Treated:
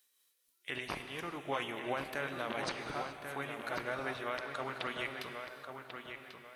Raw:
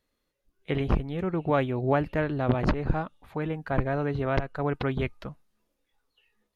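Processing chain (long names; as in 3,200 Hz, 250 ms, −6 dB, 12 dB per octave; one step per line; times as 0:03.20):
pitch shift by two crossfaded delay taps −1.5 semitones
first difference
brickwall limiter −37 dBFS, peak gain reduction 11.5 dB
on a send: feedback echo with a low-pass in the loop 1,091 ms, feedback 31%, low-pass 4,300 Hz, level −7 dB
on the sum: reverb whose tail is shaped and stops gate 450 ms flat, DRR 7 dB
level +13 dB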